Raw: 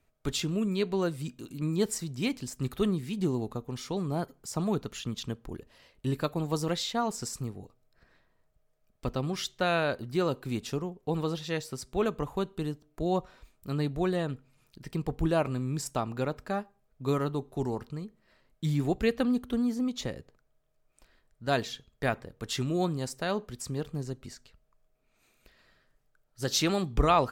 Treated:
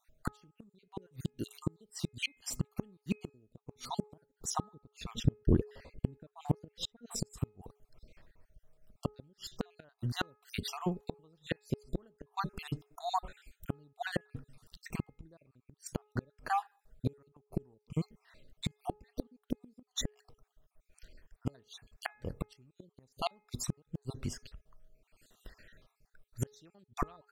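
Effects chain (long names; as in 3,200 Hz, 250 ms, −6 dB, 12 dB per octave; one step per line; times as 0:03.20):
time-frequency cells dropped at random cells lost 50%
low-shelf EQ 130 Hz +7.5 dB
gate with flip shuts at −24 dBFS, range −38 dB
0:04.74–0:07.16: tilt shelving filter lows +7.5 dB, about 1,400 Hz
hum removal 421.7 Hz, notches 6
level +5 dB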